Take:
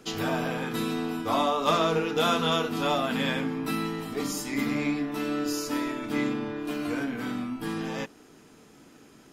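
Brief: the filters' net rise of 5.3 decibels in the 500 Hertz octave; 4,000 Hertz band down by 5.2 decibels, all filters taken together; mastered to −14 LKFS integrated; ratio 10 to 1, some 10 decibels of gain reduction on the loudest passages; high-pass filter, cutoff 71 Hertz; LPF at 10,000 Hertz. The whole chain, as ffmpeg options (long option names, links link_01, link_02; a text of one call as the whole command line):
ffmpeg -i in.wav -af "highpass=71,lowpass=10000,equalizer=frequency=500:width_type=o:gain=6.5,equalizer=frequency=4000:width_type=o:gain=-6.5,acompressor=threshold=-27dB:ratio=10,volume=18dB" out.wav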